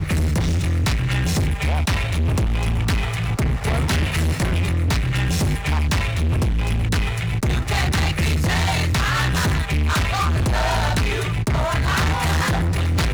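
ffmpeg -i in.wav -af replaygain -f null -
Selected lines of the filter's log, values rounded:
track_gain = +5.0 dB
track_peak = 0.100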